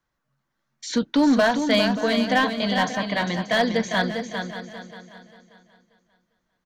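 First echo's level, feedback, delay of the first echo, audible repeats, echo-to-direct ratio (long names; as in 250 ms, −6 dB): −7.0 dB, repeats not evenly spaced, 401 ms, 8, −5.5 dB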